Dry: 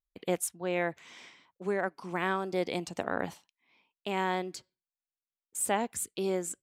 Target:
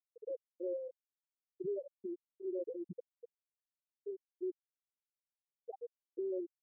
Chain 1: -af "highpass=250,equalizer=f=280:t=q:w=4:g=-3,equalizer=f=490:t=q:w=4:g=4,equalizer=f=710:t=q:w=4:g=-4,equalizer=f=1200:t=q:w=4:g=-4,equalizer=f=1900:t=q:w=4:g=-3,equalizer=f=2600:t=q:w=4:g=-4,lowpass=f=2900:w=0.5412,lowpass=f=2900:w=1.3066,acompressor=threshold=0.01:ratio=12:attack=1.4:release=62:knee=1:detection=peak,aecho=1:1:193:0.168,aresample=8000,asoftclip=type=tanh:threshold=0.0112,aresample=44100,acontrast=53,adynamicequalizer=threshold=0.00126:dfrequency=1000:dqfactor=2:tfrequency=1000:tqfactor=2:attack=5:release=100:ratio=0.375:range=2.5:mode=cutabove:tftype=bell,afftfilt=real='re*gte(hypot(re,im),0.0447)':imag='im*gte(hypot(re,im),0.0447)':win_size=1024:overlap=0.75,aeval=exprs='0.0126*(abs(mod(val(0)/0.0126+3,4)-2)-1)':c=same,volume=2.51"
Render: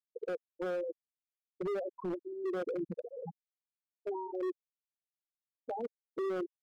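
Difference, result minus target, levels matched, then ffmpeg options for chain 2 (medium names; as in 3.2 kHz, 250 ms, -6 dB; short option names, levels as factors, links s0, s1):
compression: peak gain reduction -5.5 dB
-af "highpass=250,equalizer=f=280:t=q:w=4:g=-3,equalizer=f=490:t=q:w=4:g=4,equalizer=f=710:t=q:w=4:g=-4,equalizer=f=1200:t=q:w=4:g=-4,equalizer=f=1900:t=q:w=4:g=-3,equalizer=f=2600:t=q:w=4:g=-4,lowpass=f=2900:w=0.5412,lowpass=f=2900:w=1.3066,acompressor=threshold=0.00501:ratio=12:attack=1.4:release=62:knee=1:detection=peak,aecho=1:1:193:0.168,aresample=8000,asoftclip=type=tanh:threshold=0.0112,aresample=44100,acontrast=53,adynamicequalizer=threshold=0.00126:dfrequency=1000:dqfactor=2:tfrequency=1000:tqfactor=2:attack=5:release=100:ratio=0.375:range=2.5:mode=cutabove:tftype=bell,afftfilt=real='re*gte(hypot(re,im),0.0447)':imag='im*gte(hypot(re,im),0.0447)':win_size=1024:overlap=0.75,aeval=exprs='0.0126*(abs(mod(val(0)/0.0126+3,4)-2)-1)':c=same,volume=2.51"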